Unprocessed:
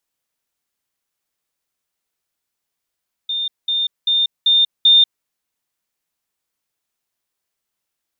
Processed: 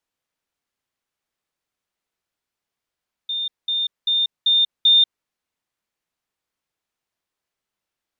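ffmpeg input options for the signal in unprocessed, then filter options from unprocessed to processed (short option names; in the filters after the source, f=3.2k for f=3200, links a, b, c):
-f lavfi -i "aevalsrc='pow(10,(-19+3*floor(t/0.39))/20)*sin(2*PI*3620*t)*clip(min(mod(t,0.39),0.19-mod(t,0.39))/0.005,0,1)':d=1.95:s=44100"
-af "lowpass=f=3.5k:p=1"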